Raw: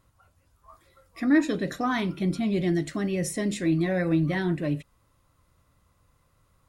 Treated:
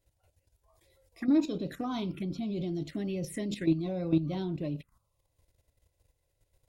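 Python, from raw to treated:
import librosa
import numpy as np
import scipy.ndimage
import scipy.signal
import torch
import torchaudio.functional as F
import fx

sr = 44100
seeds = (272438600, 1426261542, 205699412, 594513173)

y = fx.env_phaser(x, sr, low_hz=200.0, high_hz=1800.0, full_db=-23.5)
y = fx.level_steps(y, sr, step_db=11)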